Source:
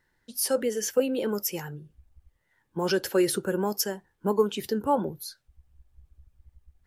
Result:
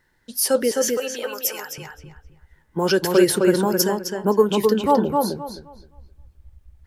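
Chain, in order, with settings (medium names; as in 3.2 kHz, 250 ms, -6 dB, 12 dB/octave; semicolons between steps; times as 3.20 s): 0.71–1.78 s: high-pass 880 Hz 12 dB/octave; filtered feedback delay 260 ms, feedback 24%, low-pass 4 kHz, level -3 dB; trim +6.5 dB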